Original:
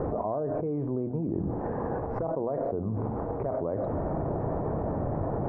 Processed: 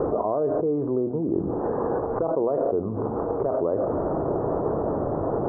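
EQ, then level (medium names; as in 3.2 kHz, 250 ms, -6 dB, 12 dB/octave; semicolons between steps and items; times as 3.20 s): resonant low-pass 1.3 kHz, resonance Q 2.8; peaking EQ 400 Hz +11 dB 1.5 oct; -3.0 dB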